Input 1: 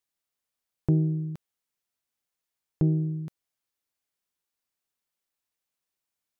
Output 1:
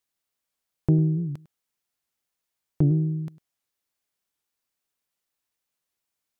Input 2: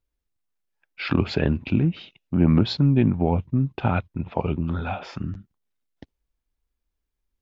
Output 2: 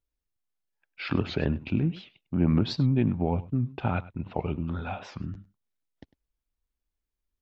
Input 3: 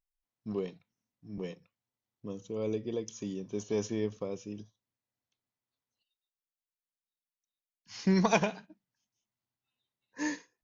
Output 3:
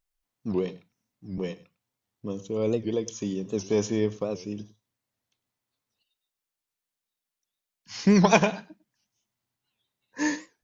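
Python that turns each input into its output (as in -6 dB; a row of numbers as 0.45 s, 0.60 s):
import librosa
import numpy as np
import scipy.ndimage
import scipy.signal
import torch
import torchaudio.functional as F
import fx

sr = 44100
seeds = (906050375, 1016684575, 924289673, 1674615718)

y = x + 10.0 ** (-19.0 / 20.0) * np.pad(x, (int(101 * sr / 1000.0), 0))[:len(x)]
y = fx.record_warp(y, sr, rpm=78.0, depth_cents=160.0)
y = y * 10.0 ** (-30 / 20.0) / np.sqrt(np.mean(np.square(y)))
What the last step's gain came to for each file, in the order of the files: +3.0 dB, -5.5 dB, +7.0 dB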